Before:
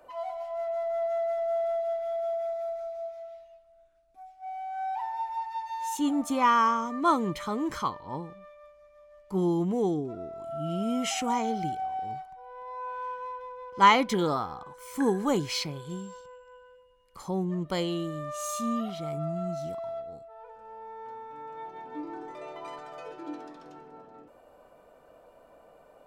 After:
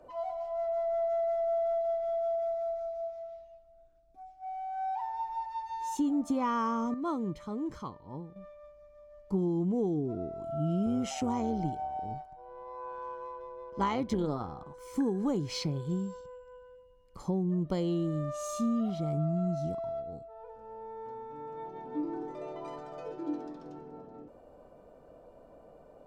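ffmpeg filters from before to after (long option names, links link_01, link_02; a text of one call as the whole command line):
ffmpeg -i in.wav -filter_complex "[0:a]asettb=1/sr,asplit=3[link_01][link_02][link_03];[link_01]atrim=end=10.864[link_04];[link_02]atrim=start=10.86:end=14.74,asetpts=PTS-STARTPTS,afade=type=in:duration=0.004:curve=qsin,afade=type=out:start_time=3.876:duration=0.004:curve=qsin,tremolo=f=140:d=0.519[link_05];[link_03]atrim=start=14.736[link_06];[link_04][link_05]acrossfade=duration=0.004:curve1=hsin:curve2=qsin[link_07];[link_07][link_06]acrossfade=duration=0.004:curve1=qsin:curve2=hsin,asplit=3[link_08][link_09][link_10];[link_08]atrim=end=6.942[link_11];[link_09]atrim=start=6.938:end=8.362,asetpts=PTS-STARTPTS,volume=-9dB[link_12];[link_10]atrim=start=8.358[link_13];[link_11][link_12]acrossfade=duration=0.004:curve1=hsin:curve2=hsin[link_14];[link_14][link_13]acrossfade=duration=0.004:curve1=hsin:curve2=hsin,tiltshelf=frequency=890:gain=10,acompressor=threshold=-23dB:ratio=12,equalizer=frequency=5500:width=0.79:gain=8,volume=-3dB" out.wav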